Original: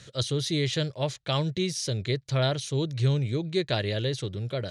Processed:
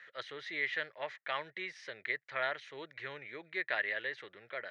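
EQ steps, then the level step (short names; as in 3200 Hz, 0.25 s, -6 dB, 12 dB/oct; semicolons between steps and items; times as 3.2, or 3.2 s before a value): HPF 730 Hz 12 dB/oct; synth low-pass 1900 Hz, resonance Q 5.4; -6.5 dB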